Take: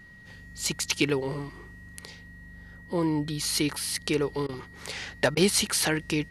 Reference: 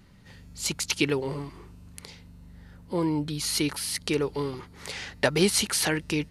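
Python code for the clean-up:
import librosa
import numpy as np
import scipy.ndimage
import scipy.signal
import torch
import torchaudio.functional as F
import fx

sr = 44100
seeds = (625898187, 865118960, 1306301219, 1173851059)

y = fx.fix_declip(x, sr, threshold_db=-12.0)
y = fx.notch(y, sr, hz=1900.0, q=30.0)
y = fx.fix_interpolate(y, sr, at_s=(4.47, 5.35), length_ms=18.0)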